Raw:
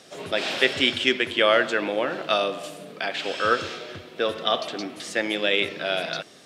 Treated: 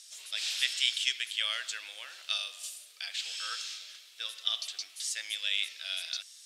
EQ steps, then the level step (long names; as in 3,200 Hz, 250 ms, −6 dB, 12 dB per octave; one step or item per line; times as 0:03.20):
resonant band-pass 6,300 Hz, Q 0.65
first difference
+5.0 dB